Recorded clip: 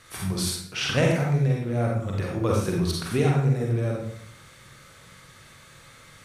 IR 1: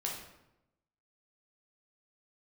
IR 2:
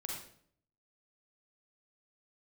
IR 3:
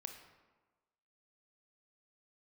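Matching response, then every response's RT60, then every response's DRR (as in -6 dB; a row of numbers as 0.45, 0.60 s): 2; 0.90, 0.60, 1.3 s; -2.5, -2.0, 4.5 dB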